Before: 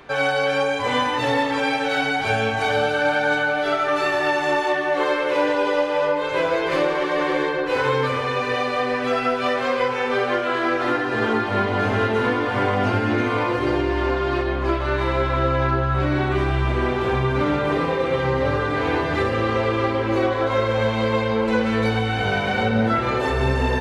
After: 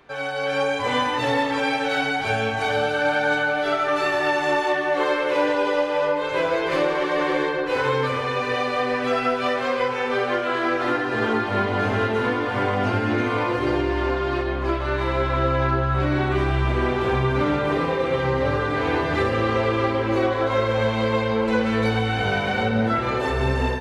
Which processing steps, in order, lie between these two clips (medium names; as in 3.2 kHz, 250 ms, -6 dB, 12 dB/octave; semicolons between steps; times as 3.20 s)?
level rider; trim -8.5 dB